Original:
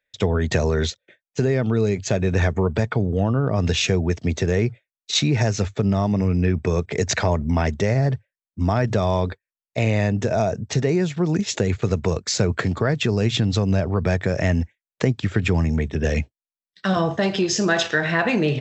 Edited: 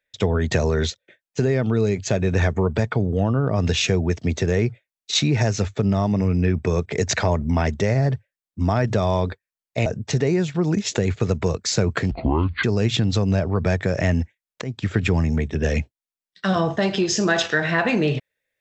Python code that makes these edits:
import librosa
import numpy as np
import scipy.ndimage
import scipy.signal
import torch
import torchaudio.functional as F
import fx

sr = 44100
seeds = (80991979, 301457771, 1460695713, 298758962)

y = fx.edit(x, sr, fx.cut(start_s=9.86, length_s=0.62),
    fx.speed_span(start_s=12.73, length_s=0.31, speed=0.59),
    fx.fade_in_from(start_s=15.02, length_s=0.26, floor_db=-18.0), tone=tone)